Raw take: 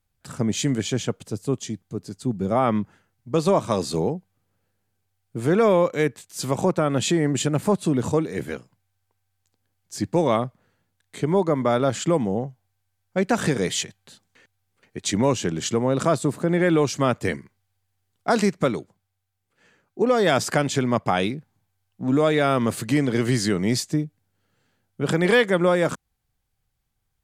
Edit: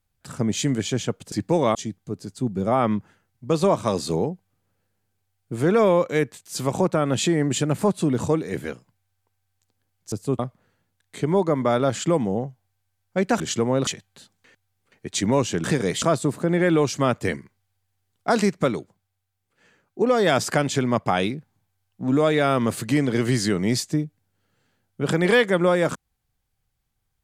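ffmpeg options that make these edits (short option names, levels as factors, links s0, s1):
-filter_complex "[0:a]asplit=9[s0][s1][s2][s3][s4][s5][s6][s7][s8];[s0]atrim=end=1.322[s9];[s1]atrim=start=9.958:end=10.392[s10];[s2]atrim=start=1.588:end=9.962[s11];[s3]atrim=start=1.318:end=1.592[s12];[s4]atrim=start=10.388:end=13.402[s13];[s5]atrim=start=15.548:end=16.022[s14];[s6]atrim=start=13.778:end=15.552[s15];[s7]atrim=start=13.398:end=13.782[s16];[s8]atrim=start=16.018[s17];[s9][s10]acrossfade=d=0.004:c1=hsin:c2=hsin[s18];[s18][s11]acrossfade=d=0.004:c1=hsin:c2=hsin[s19];[s19][s12]acrossfade=d=0.004:c1=hsin:c2=hsin[s20];[s20][s13]acrossfade=d=0.004:c1=hsin:c2=hsin[s21];[s21][s14]acrossfade=d=0.004:c1=hsin:c2=hsin[s22];[s22][s15]acrossfade=d=0.004:c1=hsin:c2=hsin[s23];[s23][s16]acrossfade=d=0.004:c1=hsin:c2=hsin[s24];[s24][s17]acrossfade=d=0.004:c1=hsin:c2=hsin"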